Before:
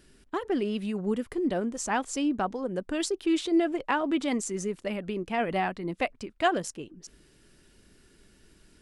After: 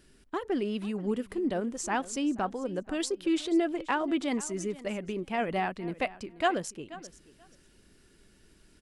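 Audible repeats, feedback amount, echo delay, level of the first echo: 2, 16%, 482 ms, −18.0 dB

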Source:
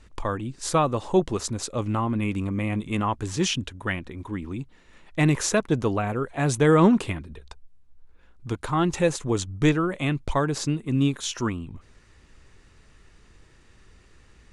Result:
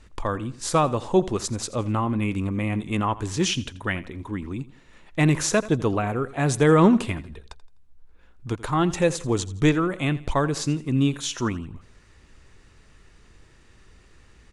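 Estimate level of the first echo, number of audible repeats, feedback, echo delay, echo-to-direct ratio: −18.0 dB, 2, 37%, 84 ms, −17.5 dB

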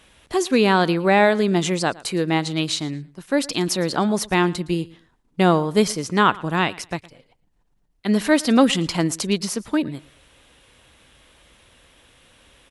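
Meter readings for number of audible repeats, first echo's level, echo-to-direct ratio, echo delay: 2, −21.5 dB, −21.5 dB, 113 ms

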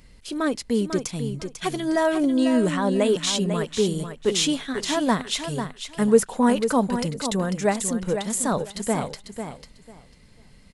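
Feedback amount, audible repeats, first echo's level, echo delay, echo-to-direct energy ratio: 19%, 2, −8.5 dB, 496 ms, −8.5 dB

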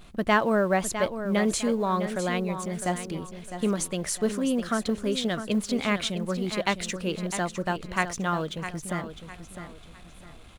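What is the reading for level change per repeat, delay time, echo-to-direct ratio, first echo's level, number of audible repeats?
−9.5 dB, 656 ms, −9.5 dB, −10.0 dB, 3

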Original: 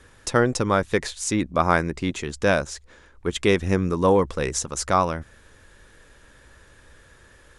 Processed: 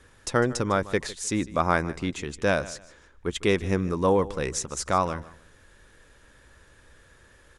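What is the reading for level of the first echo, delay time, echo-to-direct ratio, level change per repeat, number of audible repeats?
−18.0 dB, 153 ms, −17.5 dB, −11.5 dB, 2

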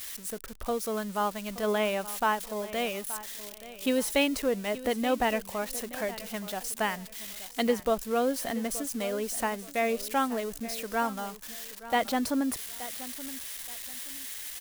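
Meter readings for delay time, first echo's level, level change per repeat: 875 ms, −15.5 dB, −11.5 dB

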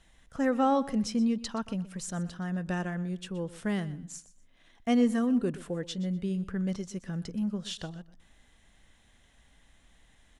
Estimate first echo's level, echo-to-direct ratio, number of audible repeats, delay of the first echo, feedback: −17.0 dB, −17.0 dB, 2, 123 ms, 25%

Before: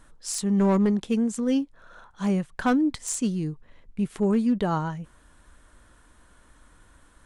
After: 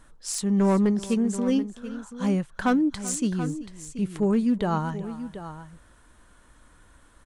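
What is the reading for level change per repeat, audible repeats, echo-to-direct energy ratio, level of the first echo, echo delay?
repeats not evenly spaced, 2, −11.5 dB, −18.5 dB, 384 ms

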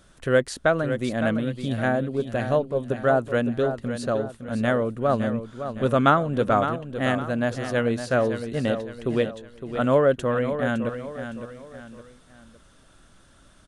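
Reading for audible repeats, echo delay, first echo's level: 3, 561 ms, −9.5 dB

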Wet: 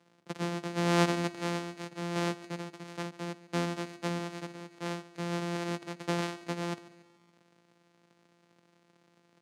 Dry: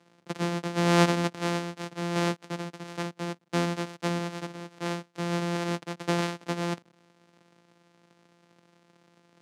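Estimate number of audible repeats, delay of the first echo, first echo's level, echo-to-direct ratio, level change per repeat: 3, 142 ms, −18.0 dB, −17.0 dB, −6.0 dB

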